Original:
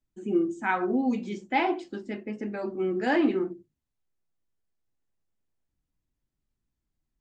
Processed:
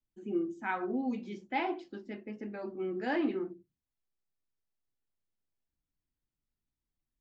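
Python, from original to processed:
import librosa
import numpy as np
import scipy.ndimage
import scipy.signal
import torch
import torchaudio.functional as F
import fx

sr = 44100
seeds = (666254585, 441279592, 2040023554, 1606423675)

y = scipy.signal.sosfilt(scipy.signal.butter(4, 6000.0, 'lowpass', fs=sr, output='sos'), x)
y = fx.hum_notches(y, sr, base_hz=60, count=3)
y = F.gain(torch.from_numpy(y), -7.5).numpy()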